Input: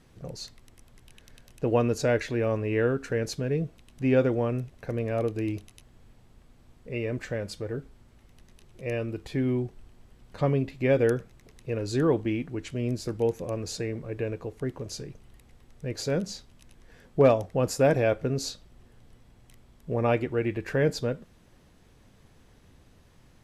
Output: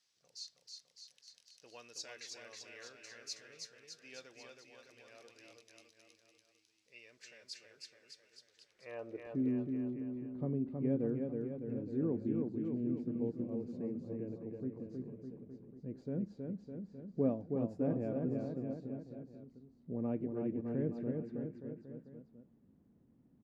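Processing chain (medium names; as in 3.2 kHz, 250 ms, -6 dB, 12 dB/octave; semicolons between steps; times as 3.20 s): band-pass sweep 5.2 kHz -> 230 Hz, 8.46–9.37 s; bouncing-ball echo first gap 320 ms, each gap 0.9×, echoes 5; trim -4 dB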